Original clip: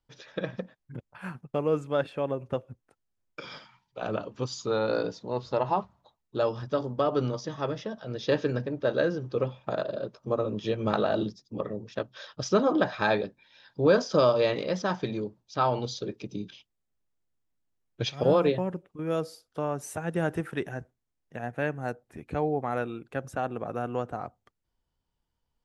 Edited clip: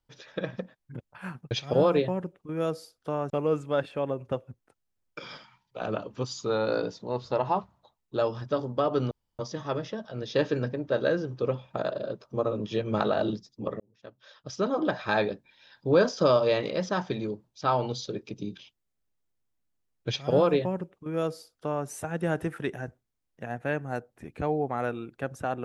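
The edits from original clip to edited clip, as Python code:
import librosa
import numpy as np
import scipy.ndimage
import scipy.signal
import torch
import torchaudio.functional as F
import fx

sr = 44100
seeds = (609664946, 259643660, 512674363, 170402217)

y = fx.edit(x, sr, fx.insert_room_tone(at_s=7.32, length_s=0.28),
    fx.fade_in_span(start_s=11.73, length_s=1.45),
    fx.duplicate(start_s=18.01, length_s=1.79, to_s=1.51), tone=tone)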